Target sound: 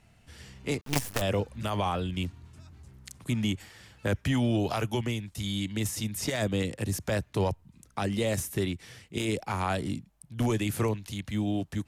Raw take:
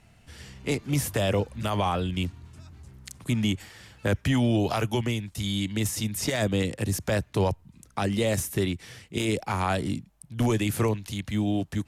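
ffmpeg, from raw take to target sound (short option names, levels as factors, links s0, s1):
-filter_complex "[0:a]asettb=1/sr,asplit=3[s0][s1][s2];[s0]atrim=end=0.814[s3];[s1]atrim=start=0.81:end=1.22,asetpts=PTS-STARTPTS,afade=t=in:d=0.004:c=qsin,afade=t=out:st=0.406:d=0.004:c=qsin,acrusher=bits=4:dc=4:mix=0:aa=0.000001[s4];[s2]atrim=start=1.216[s5];[s3][s4]acrossfade=d=0.004:c1=hsin:c2=qsin[s6];[s6][s5]acrossfade=d=0.004:c1=qsin:c2=hsin,aeval=exprs='0.282*(cos(1*acos(clip(val(0)/0.282,-1,1)))-cos(1*PI/2))+0.0141*(cos(3*acos(clip(val(0)/0.282,-1,1)))-cos(3*PI/2))':c=same,volume=0.794"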